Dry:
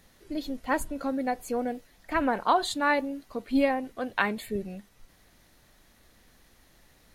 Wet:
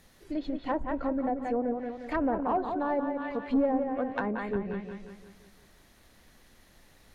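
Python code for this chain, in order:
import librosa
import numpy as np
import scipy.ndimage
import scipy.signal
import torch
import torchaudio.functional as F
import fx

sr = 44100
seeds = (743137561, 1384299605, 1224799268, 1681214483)

y = np.clip(10.0 ** (20.0 / 20.0) * x, -1.0, 1.0) / 10.0 ** (20.0 / 20.0)
y = fx.echo_bbd(y, sr, ms=177, stages=4096, feedback_pct=49, wet_db=-6)
y = fx.env_lowpass_down(y, sr, base_hz=800.0, full_db=-24.5)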